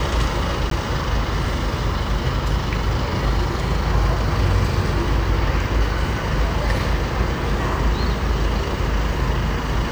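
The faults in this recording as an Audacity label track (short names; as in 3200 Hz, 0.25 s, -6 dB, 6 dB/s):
0.700000	0.710000	gap 13 ms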